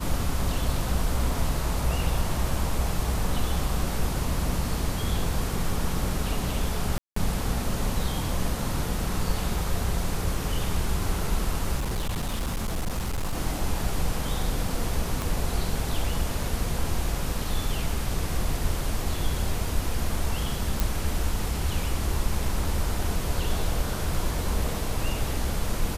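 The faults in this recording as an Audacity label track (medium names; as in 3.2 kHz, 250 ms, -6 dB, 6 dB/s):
6.980000	7.160000	dropout 184 ms
11.770000	13.370000	clipped -24 dBFS
15.220000	15.220000	pop
20.800000	20.800000	pop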